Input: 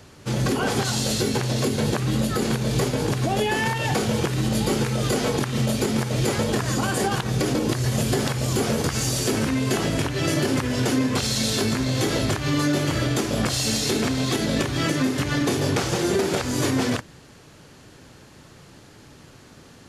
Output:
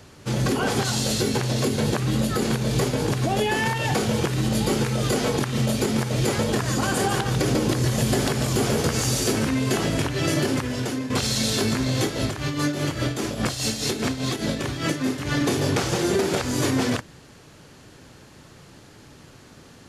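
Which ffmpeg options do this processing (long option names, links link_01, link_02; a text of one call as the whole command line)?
ffmpeg -i in.wav -filter_complex "[0:a]asettb=1/sr,asplit=3[link_01][link_02][link_03];[link_01]atrim=end=6.664[link_04];[link_02]atrim=start=6.66:end=9.33,asetpts=PTS-STARTPTS,afade=type=in:duration=0.004:curve=qsin,afade=type=out:start_time=2.666:duration=0.004:curve=qsin,aecho=1:1:146:0.501,atrim=end_sample=117747[link_05];[link_03]atrim=start=9.326[link_06];[link_04][link_05]acrossfade=duration=0.004:curve1=hsin:curve2=qsin[link_07];[link_07][link_06]acrossfade=duration=0.004:curve1=qsin:curve2=hsin,asettb=1/sr,asplit=3[link_08][link_09][link_10];[link_08]atrim=end=12.034[link_11];[link_09]atrim=start=12.03:end=15.29,asetpts=PTS-STARTPTS,afade=type=in:duration=0.004:curve=qsin,afade=type=out:start_time=3.256:duration=0.004:curve=qsin,tremolo=f=4.9:d=0.62[link_12];[link_10]atrim=start=15.286[link_13];[link_11][link_12]acrossfade=duration=0.004:curve1=hsin:curve2=qsin[link_14];[link_14][link_13]acrossfade=duration=0.004:curve1=qsin:curve2=hsin,asplit=2[link_15][link_16];[link_15]atrim=end=11.1,asetpts=PTS-STARTPTS,afade=type=out:start_time=10.39:duration=0.71:silence=0.354813[link_17];[link_16]atrim=start=11.1,asetpts=PTS-STARTPTS,afade=type=in:duration=0.004:curve=hsin:silence=0.354813[link_18];[link_17][link_18]concat=n=2:v=0:a=1" out.wav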